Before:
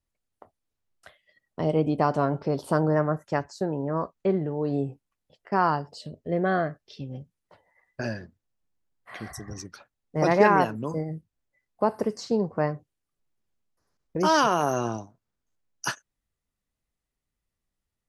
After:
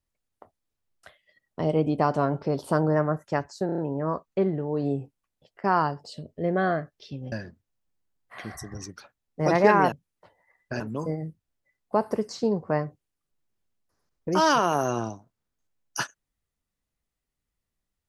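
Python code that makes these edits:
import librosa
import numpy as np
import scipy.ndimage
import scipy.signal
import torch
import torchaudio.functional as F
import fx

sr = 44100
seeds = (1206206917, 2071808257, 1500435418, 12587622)

y = fx.edit(x, sr, fx.stutter(start_s=3.66, slice_s=0.03, count=5),
    fx.move(start_s=7.2, length_s=0.88, to_s=10.68), tone=tone)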